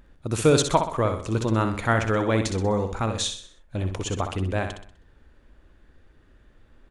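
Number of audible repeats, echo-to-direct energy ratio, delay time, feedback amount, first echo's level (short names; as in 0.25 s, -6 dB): 4, -6.5 dB, 63 ms, 43%, -7.5 dB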